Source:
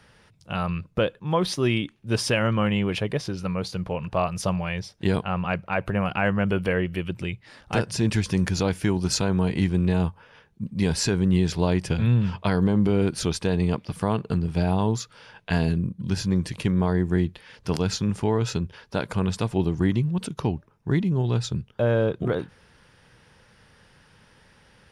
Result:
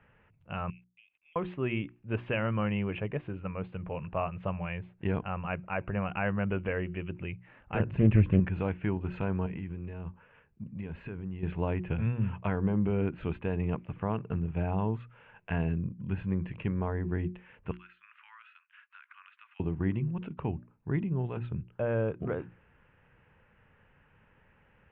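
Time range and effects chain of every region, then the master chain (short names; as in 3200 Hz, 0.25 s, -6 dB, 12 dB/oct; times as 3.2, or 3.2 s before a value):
0.7–1.36 Chebyshev high-pass 2100 Hz, order 8 + companded quantiser 6-bit + compressor 8:1, threshold -47 dBFS
7.8–8.4 low shelf 350 Hz +10.5 dB + Doppler distortion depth 0.33 ms
9.46–11.43 bell 800 Hz -3.5 dB 0.36 oct + compressor 5:1, threshold -27 dBFS
17.71–19.6 steep high-pass 1200 Hz 48 dB/oct + compressor 5:1, threshold -40 dBFS
whole clip: elliptic low-pass 2700 Hz, stop band 50 dB; low shelf 110 Hz +5 dB; notches 60/120/180/240/300/360 Hz; gain -7.5 dB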